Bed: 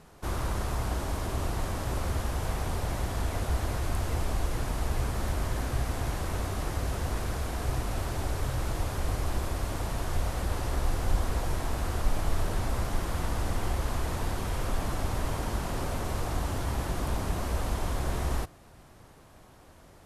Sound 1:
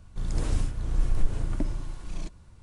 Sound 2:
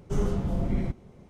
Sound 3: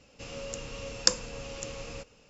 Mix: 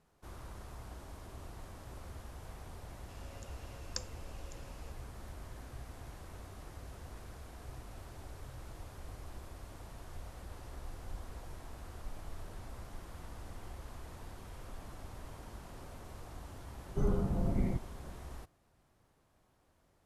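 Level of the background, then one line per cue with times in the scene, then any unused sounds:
bed −17.5 dB
0:02.89: mix in 3 −17.5 dB
0:16.86: mix in 2 −4.5 dB + spectral peaks only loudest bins 64
not used: 1

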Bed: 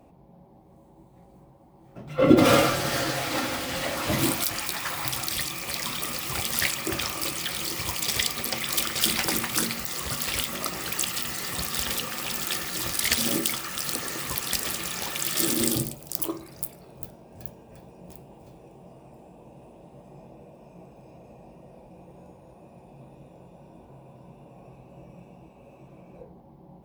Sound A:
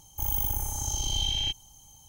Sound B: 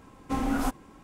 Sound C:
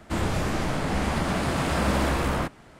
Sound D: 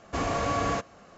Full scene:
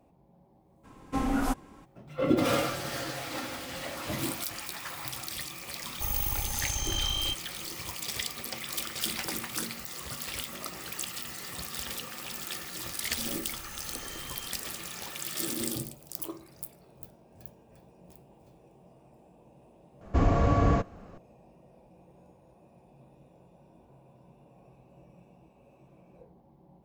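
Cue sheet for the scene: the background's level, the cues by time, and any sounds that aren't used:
bed −8.5 dB
0:00.83: mix in B −0.5 dB, fades 0.02 s
0:05.82: mix in A −2.5 dB
0:12.97: mix in A −7 dB + downward compressor, threshold −37 dBFS
0:20.01: mix in D −1.5 dB + spectral tilt −3.5 dB per octave
not used: C

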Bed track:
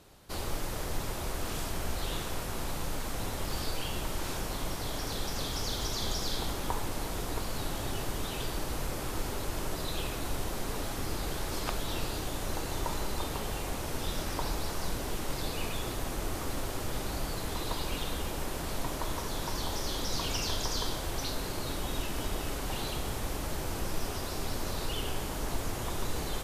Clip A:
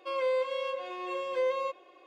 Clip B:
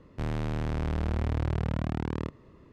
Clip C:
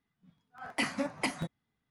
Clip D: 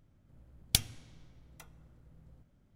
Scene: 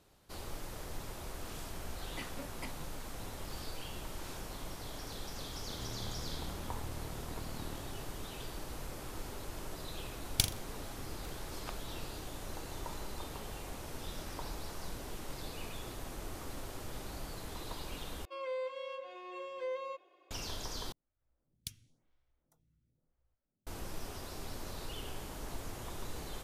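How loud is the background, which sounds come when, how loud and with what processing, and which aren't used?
bed track −9 dB
0:01.39: mix in C −14 dB
0:05.52: mix in B −5 dB + downward compressor, threshold −37 dBFS
0:09.65: mix in D −3 dB + flutter between parallel walls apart 7.1 metres, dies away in 0.3 s
0:18.25: overwrite with A −9.5 dB
0:20.92: overwrite with D −16 dB + phaser with staggered stages 0.97 Hz

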